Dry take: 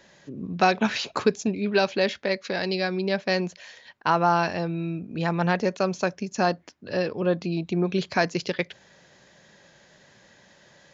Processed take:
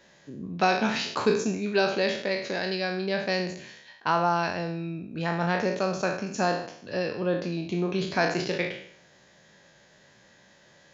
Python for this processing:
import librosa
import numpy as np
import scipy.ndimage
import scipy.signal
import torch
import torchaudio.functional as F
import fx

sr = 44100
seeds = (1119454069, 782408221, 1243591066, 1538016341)

y = fx.spec_trails(x, sr, decay_s=0.63)
y = y * 10.0 ** (-4.0 / 20.0)